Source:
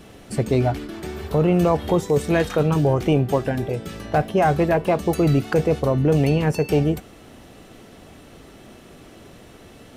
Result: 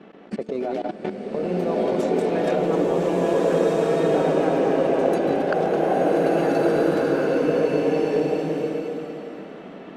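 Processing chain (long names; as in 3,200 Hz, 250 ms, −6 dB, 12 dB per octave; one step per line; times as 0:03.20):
delay that plays each chunk backwards 128 ms, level −10 dB
elliptic high-pass filter 180 Hz, stop band 40 dB
high-shelf EQ 6,000 Hz −7 dB
on a send: echo through a band-pass that steps 108 ms, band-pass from 570 Hz, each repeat 0.7 octaves, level −7.5 dB
on the sum: low-pass that shuts in the quiet parts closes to 2,200 Hz, open at −14.5 dBFS
in parallel at −1 dB: compressor whose output falls as the input rises −24 dBFS, ratio −0.5
on the sum: dynamic equaliser 490 Hz, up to +5 dB, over −29 dBFS, Q 1.6
transient designer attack +11 dB, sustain −1 dB
output level in coarse steps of 20 dB
slow-attack reverb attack 1,670 ms, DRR −6 dB
level −6 dB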